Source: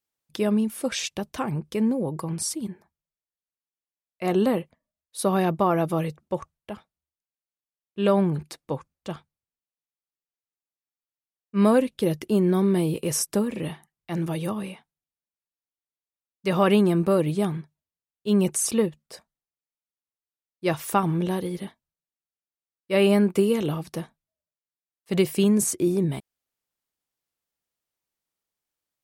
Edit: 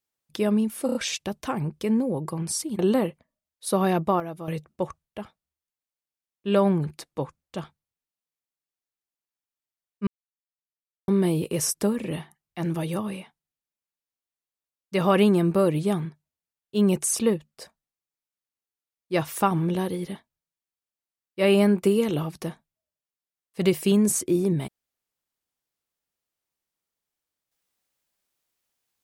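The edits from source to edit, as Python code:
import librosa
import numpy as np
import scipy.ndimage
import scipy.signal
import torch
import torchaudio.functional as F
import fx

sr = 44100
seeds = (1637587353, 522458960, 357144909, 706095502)

y = fx.edit(x, sr, fx.stutter(start_s=0.86, slice_s=0.03, count=4),
    fx.cut(start_s=2.7, length_s=1.61),
    fx.fade_down_up(start_s=5.37, length_s=0.98, db=-11.5, fade_s=0.35, curve='log'),
    fx.silence(start_s=11.59, length_s=1.01), tone=tone)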